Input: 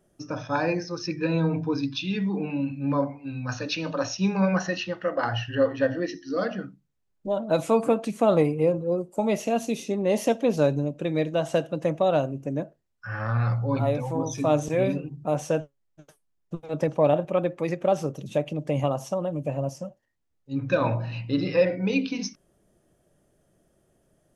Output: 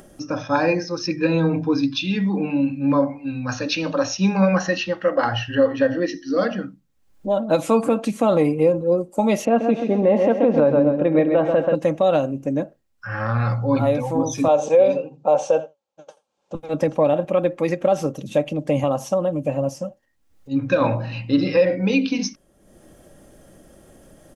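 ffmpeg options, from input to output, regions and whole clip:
-filter_complex "[0:a]asettb=1/sr,asplit=3[a][b][c];[a]atrim=end=9.454[d];[b]atrim=start=9.45:end=11.75,asetpts=PTS-STARTPTS,afade=t=in:d=0.004:c=qsin,afade=t=out:st=2.296:d=0.004:c=qsin,lowpass=1.8k,equalizer=f=890:w=0.36:g=5,aecho=1:1:132|264|396|528|660:0.422|0.173|0.0709|0.0291|0.0119,atrim=end_sample=101430[e];[c]atrim=start=11.746[f];[d][e]acrossfade=d=0.004:c1=hsin:c2=qsin[g];[g][f]acrossfade=d=0.004:c1=qsin:c2=hsin,asettb=1/sr,asplit=3[h][i][j];[h]atrim=end=14.484[k];[i]atrim=start=14.48:end=16.55,asetpts=PTS-STARTPTS,afade=t=in:d=0.004:c=qsin,afade=t=out:st=2.066:d=0.004:c=qsin,highpass=260,equalizer=f=290:t=q:w=4:g=-8,equalizer=f=530:t=q:w=4:g=10,equalizer=f=860:t=q:w=4:g=9,equalizer=f=1.9k:t=q:w=4:g=-10,equalizer=f=5.2k:t=q:w=4:g=-3,lowpass=f=7k:w=0.5412,lowpass=f=7k:w=1.3066,aecho=1:1:83:0.0841,atrim=end_sample=91287[l];[j]atrim=start=16.546[m];[k][l]acrossfade=d=0.004:c1=hsin:c2=qsin[n];[n][m]acrossfade=d=0.004:c1=qsin:c2=hsin,aecho=1:1:3.7:0.34,acompressor=mode=upward:threshold=-42dB:ratio=2.5,alimiter=limit=-13dB:level=0:latency=1:release=99,volume=5.5dB"

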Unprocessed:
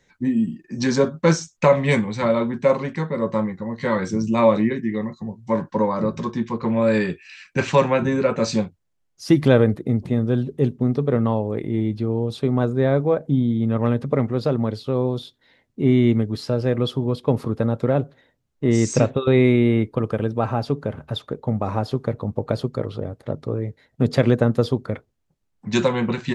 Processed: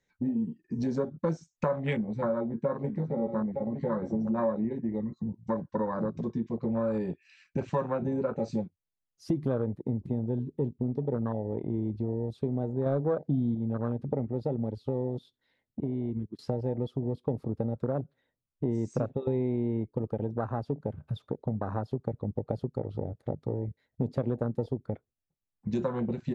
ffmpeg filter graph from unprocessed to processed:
-filter_complex "[0:a]asettb=1/sr,asplit=3[a][b][c];[a]atrim=end=1.934[d];[b]atrim=start=1.93:end=4.64,asetpts=PTS-STARTPTS,afade=t=in:d=0.004:c=qsin,afade=t=out:st=2.706:d=0.004:c=qsin,highshelf=f=2.5k:g=-9.5,asplit=2[e][f];[f]adelay=14,volume=-7.5dB[g];[e][g]amix=inputs=2:normalize=0,atrim=end_sample=119511,aecho=1:1:910:0.299,atrim=end_sample=119511[h];[c]atrim=start=4.636[i];[d][h]acrossfade=d=0.004:c1=hsin:c2=qsin[j];[j][i]acrossfade=d=0.004:c1=qsin:c2=hsin,asettb=1/sr,asplit=3[k][l][m];[k]atrim=end=12.864[n];[l]atrim=start=12.86:end=13.55,asetpts=PTS-STARTPTS,afade=t=in:d=0.004:c=qsin,afade=t=out:st=0.686:d=0.004:c=qsin,lowpass=f=4.8k:t=q:w=3.6,acontrast=63[o];[m]atrim=start=13.546[p];[n][o]acrossfade=d=0.004:c1=hsin:c2=qsin[q];[q][p]acrossfade=d=0.004:c1=qsin:c2=hsin,asettb=1/sr,asplit=3[r][s][t];[r]atrim=end=15.804[u];[s]atrim=start=15.8:end=16.39,asetpts=PTS-STARTPTS,afade=t=in:d=0.004:c=qsin,afade=t=out:st=0.586:d=0.004:c=qsin,agate=range=-33dB:threshold=-16dB:ratio=3:release=100:detection=peak,acompressor=threshold=-22dB:ratio=5:attack=3.2:release=140:knee=1:detection=peak[v];[t]atrim=start=16.386[w];[u][v]acrossfade=d=0.004:c1=hsin:c2=qsin[x];[x][w]acrossfade=d=0.004:c1=qsin:c2=hsin,afwtdn=0.0794,acompressor=threshold=-30dB:ratio=3"

